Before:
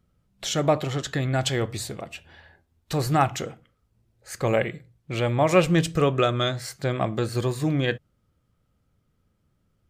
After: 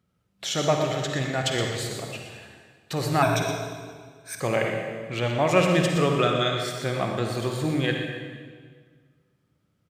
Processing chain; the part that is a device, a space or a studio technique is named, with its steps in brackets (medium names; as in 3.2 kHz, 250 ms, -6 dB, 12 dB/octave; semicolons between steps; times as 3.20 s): PA in a hall (high-pass 100 Hz; peaking EQ 2.6 kHz +3 dB 2.3 oct; delay 121 ms -10 dB; reverberation RT60 1.7 s, pre-delay 45 ms, DRR 2.5 dB); 3.22–4.40 s: rippled EQ curve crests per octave 1.6, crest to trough 17 dB; trim -3 dB